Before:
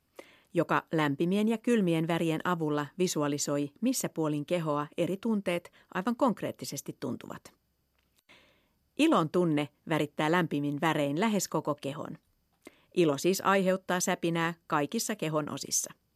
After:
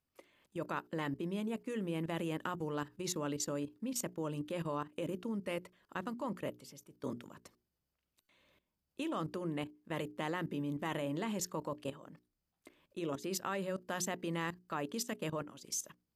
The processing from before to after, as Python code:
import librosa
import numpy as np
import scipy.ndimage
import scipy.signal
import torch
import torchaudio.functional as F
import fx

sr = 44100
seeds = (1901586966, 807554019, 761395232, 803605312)

y = fx.level_steps(x, sr, step_db=17)
y = fx.hum_notches(y, sr, base_hz=60, count=7)
y = y * librosa.db_to_amplitude(-2.5)